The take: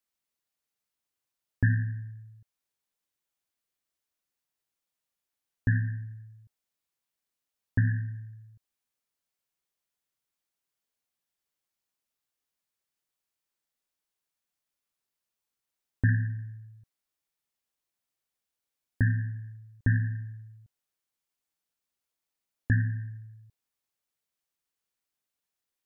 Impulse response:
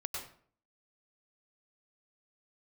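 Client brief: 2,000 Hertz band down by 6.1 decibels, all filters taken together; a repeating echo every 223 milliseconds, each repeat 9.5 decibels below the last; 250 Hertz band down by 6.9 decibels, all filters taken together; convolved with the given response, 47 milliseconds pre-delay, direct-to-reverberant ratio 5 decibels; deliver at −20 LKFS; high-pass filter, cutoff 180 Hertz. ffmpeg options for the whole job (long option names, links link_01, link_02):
-filter_complex "[0:a]highpass=180,equalizer=frequency=250:width_type=o:gain=-6,equalizer=frequency=2000:width_type=o:gain=-7.5,aecho=1:1:223|446|669|892:0.335|0.111|0.0365|0.012,asplit=2[link_01][link_02];[1:a]atrim=start_sample=2205,adelay=47[link_03];[link_02][link_03]afir=irnorm=-1:irlink=0,volume=-6dB[link_04];[link_01][link_04]amix=inputs=2:normalize=0,volume=18dB"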